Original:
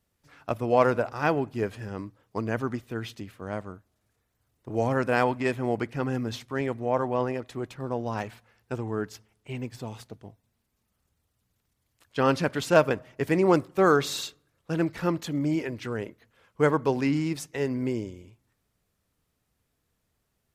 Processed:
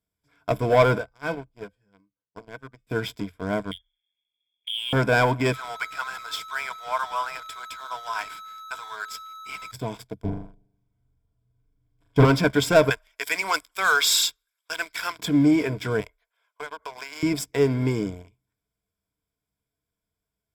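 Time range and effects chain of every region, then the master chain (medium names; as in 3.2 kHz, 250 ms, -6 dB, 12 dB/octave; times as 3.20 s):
0.98–2.87 s: feedback comb 170 Hz, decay 0.29 s, harmonics odd, mix 80% + upward expansion, over -55 dBFS
3.71–4.93 s: compression, threshold -32 dBFS + touch-sensitive phaser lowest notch 320 Hz, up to 1.6 kHz, full sweep at -39.5 dBFS + frequency inversion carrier 3.4 kHz
5.52–9.71 s: whistle 1.3 kHz -37 dBFS + high-pass 960 Hz 24 dB/octave
10.24–12.25 s: tilt EQ -4 dB/octave + comb 7.2 ms, depth 44% + flutter echo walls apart 7 m, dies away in 0.87 s
12.90–15.19 s: high-pass 900 Hz + tilt shelf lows -7.5 dB, about 1.2 kHz
16.00–17.23 s: high-pass 640 Hz 24 dB/octave + compression 12:1, threshold -37 dBFS
whole clip: waveshaping leveller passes 3; rippled EQ curve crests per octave 1.7, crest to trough 11 dB; trim -5.5 dB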